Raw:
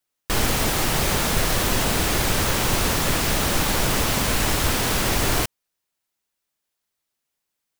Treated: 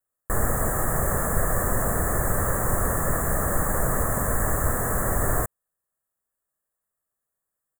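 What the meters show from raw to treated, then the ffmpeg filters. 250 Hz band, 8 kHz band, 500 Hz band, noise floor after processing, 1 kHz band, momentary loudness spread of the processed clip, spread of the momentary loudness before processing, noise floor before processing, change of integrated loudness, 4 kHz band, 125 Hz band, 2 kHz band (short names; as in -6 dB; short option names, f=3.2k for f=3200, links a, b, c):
-4.5 dB, -4.5 dB, -1.0 dB, -84 dBFS, -2.5 dB, 1 LU, 1 LU, -81 dBFS, -3.5 dB, under -40 dB, -1.0 dB, -6.5 dB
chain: -af "asuperstop=centerf=3700:order=12:qfactor=0.69,aecho=1:1:1.7:0.36,volume=-2.5dB"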